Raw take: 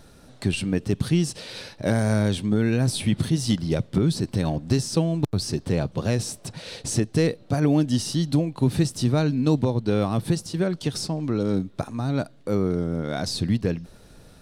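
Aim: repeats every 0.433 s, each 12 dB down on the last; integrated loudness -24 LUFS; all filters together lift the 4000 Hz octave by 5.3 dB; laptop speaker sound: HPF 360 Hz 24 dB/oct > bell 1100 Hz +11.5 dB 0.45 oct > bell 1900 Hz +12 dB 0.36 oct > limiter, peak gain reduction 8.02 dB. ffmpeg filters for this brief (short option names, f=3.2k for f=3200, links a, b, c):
-af "highpass=f=360:w=0.5412,highpass=f=360:w=1.3066,equalizer=f=1.1k:t=o:w=0.45:g=11.5,equalizer=f=1.9k:t=o:w=0.36:g=12,equalizer=f=4k:t=o:g=6,aecho=1:1:433|866|1299:0.251|0.0628|0.0157,volume=4.5dB,alimiter=limit=-12dB:level=0:latency=1"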